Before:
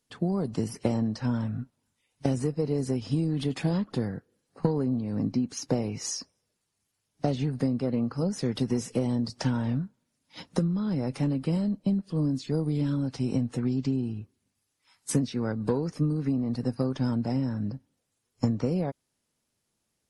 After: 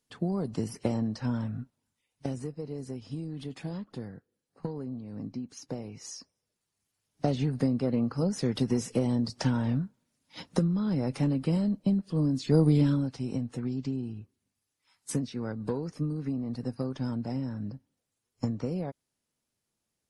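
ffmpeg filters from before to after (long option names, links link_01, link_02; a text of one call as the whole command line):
ffmpeg -i in.wav -af "volume=14.5dB,afade=type=out:start_time=1.41:duration=1.19:silence=0.421697,afade=type=in:start_time=6.08:duration=1.32:silence=0.316228,afade=type=in:start_time=12.36:duration=0.27:silence=0.446684,afade=type=out:start_time=12.63:duration=0.51:silence=0.251189" out.wav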